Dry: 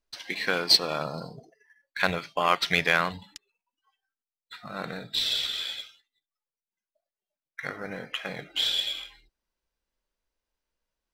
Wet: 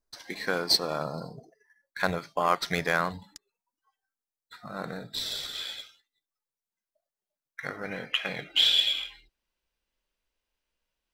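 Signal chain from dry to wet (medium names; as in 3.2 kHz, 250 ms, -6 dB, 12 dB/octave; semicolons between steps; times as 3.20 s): peaking EQ 2.8 kHz -12.5 dB 0.87 oct, from 5.55 s -5 dB, from 7.83 s +6.5 dB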